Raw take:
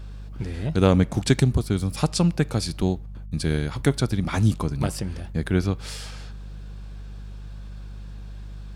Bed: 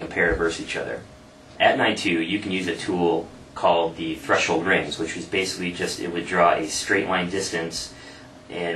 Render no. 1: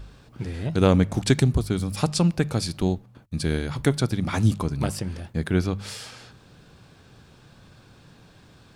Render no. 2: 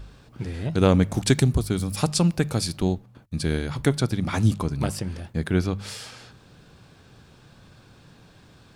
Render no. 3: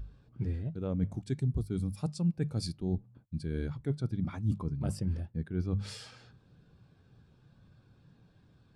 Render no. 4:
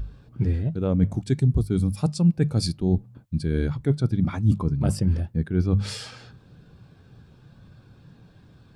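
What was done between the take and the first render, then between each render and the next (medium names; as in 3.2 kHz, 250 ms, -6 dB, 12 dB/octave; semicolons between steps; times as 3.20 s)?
de-hum 50 Hz, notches 4
1.01–2.76 s: treble shelf 8.1 kHz +7 dB
reverse; compression 16:1, threshold -29 dBFS, peak gain reduction 17.5 dB; reverse; spectral contrast expander 1.5:1
trim +10.5 dB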